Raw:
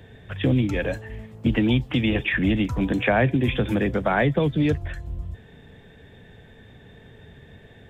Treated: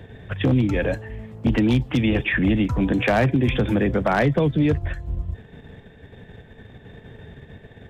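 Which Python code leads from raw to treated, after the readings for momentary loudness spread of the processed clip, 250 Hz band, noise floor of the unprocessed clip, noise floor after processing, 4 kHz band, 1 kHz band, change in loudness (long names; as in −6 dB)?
12 LU, +2.0 dB, −49 dBFS, −48 dBFS, −1.0 dB, +1.5 dB, +1.5 dB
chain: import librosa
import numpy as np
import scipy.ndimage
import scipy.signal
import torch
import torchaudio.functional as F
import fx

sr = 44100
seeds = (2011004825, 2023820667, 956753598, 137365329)

p1 = fx.high_shelf(x, sr, hz=3000.0, db=-7.5)
p2 = fx.level_steps(p1, sr, step_db=16)
p3 = p1 + (p2 * librosa.db_to_amplitude(1.0))
y = 10.0 ** (-11.0 / 20.0) * (np.abs((p3 / 10.0 ** (-11.0 / 20.0) + 3.0) % 4.0 - 2.0) - 1.0)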